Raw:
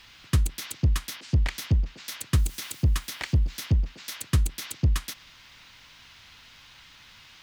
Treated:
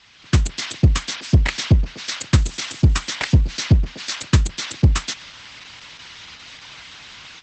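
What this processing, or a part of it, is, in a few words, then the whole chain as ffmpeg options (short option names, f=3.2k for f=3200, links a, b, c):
video call: -af "highpass=f=110:p=1,dynaudnorm=f=180:g=3:m=11.5dB,volume=1.5dB" -ar 48000 -c:a libopus -b:a 12k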